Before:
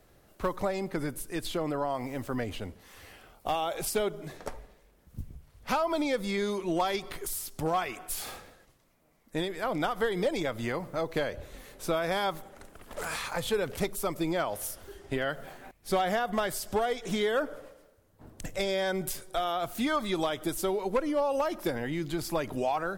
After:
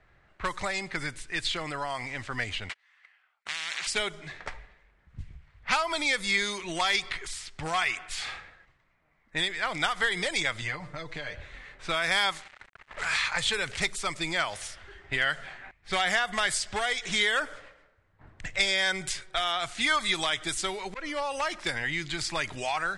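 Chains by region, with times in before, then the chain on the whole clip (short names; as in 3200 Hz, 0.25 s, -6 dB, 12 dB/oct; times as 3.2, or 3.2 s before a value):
2.69–3.87 gate -46 dBFS, range -39 dB + HPF 1100 Hz + spectral compressor 10:1
10.61–11.34 bell 2100 Hz -5.5 dB 2.4 oct + comb 6.7 ms, depth 82% + compressor, threshold -31 dBFS
12.32–12.97 low shelf 210 Hz -6.5 dB + sample gate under -48 dBFS
20.79–21.64 high shelf 6300 Hz -5 dB + auto swell 0.105 s
whole clip: steep low-pass 11000 Hz 72 dB/oct; low-pass opened by the level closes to 1500 Hz, open at -25 dBFS; graphic EQ 250/500/2000/4000/8000 Hz -8/-7/+11/+6/+12 dB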